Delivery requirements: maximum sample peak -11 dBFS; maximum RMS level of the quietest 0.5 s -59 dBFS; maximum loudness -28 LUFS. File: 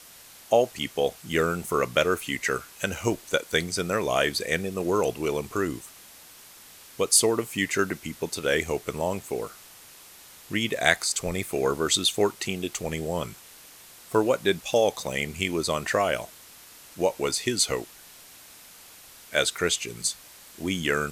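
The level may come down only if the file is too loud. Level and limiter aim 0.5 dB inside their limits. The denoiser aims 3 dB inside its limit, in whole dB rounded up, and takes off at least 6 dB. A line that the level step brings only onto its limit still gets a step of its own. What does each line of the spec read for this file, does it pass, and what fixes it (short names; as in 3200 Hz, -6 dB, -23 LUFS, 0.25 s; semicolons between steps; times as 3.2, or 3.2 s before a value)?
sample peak -2.5 dBFS: fail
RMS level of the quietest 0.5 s -49 dBFS: fail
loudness -26.0 LUFS: fail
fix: denoiser 11 dB, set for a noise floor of -49 dBFS; gain -2.5 dB; limiter -11.5 dBFS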